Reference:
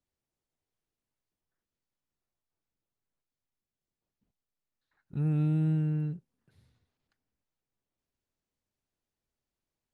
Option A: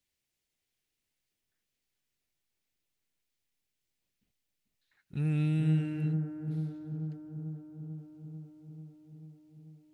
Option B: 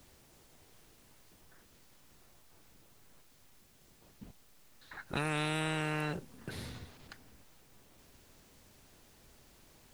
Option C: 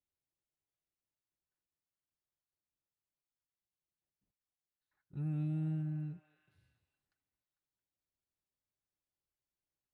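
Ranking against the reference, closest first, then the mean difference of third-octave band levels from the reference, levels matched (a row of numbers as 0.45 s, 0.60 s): C, A, B; 1.5 dB, 4.0 dB, 17.0 dB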